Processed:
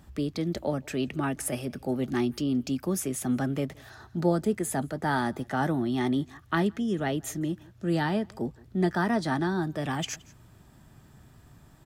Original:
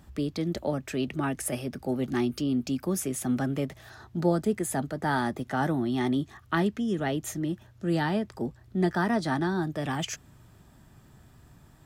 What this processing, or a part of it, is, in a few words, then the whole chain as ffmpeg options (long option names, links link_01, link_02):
ducked delay: -filter_complex "[0:a]asplit=3[link_01][link_02][link_03];[link_02]adelay=170,volume=-8.5dB[link_04];[link_03]apad=whole_len=530346[link_05];[link_04][link_05]sidechaincompress=threshold=-46dB:ratio=8:attack=9.4:release=540[link_06];[link_01][link_06]amix=inputs=2:normalize=0"